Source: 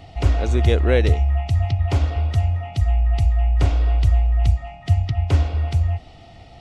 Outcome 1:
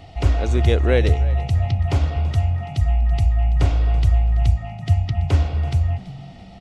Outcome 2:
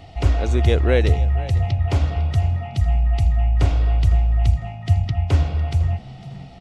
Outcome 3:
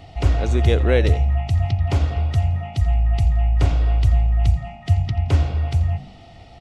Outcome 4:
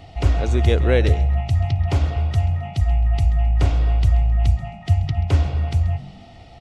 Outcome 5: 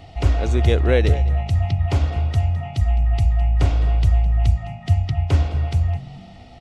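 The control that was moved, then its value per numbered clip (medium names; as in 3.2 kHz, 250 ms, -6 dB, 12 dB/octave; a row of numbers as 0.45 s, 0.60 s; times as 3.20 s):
frequency-shifting echo, time: 332 ms, 503 ms, 85 ms, 133 ms, 210 ms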